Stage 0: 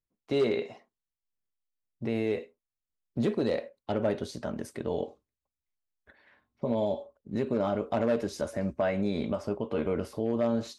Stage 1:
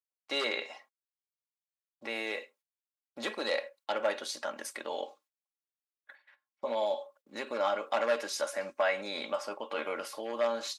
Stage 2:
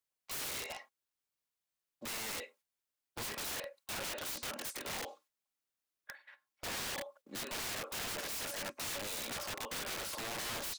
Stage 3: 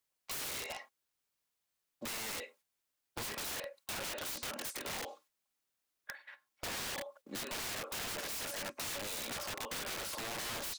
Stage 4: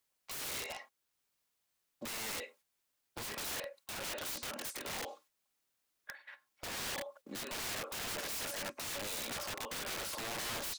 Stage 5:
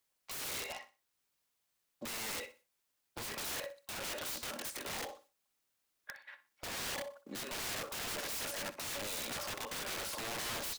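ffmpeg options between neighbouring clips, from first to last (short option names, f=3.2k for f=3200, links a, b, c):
-af "agate=range=-19dB:threshold=-59dB:ratio=16:detection=peak,highpass=980,aecho=1:1:3.6:0.45,volume=6.5dB"
-af "acompressor=threshold=-38dB:ratio=2,aeval=exprs='(mod(94.4*val(0)+1,2)-1)/94.4':c=same,volume=4.5dB"
-af "acompressor=threshold=-44dB:ratio=3,volume=4.5dB"
-af "alimiter=level_in=13.5dB:limit=-24dB:level=0:latency=1:release=414,volume=-13.5dB,volume=3dB"
-af "aecho=1:1:62|124|186:0.178|0.048|0.013"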